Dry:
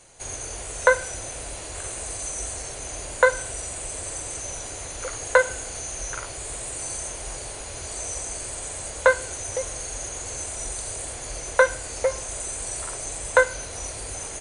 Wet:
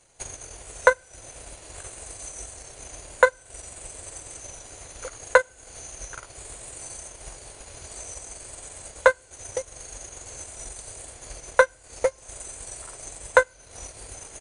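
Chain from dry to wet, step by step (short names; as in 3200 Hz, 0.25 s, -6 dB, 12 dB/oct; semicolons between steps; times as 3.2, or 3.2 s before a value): transient shaper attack +10 dB, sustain -12 dB; gain -8 dB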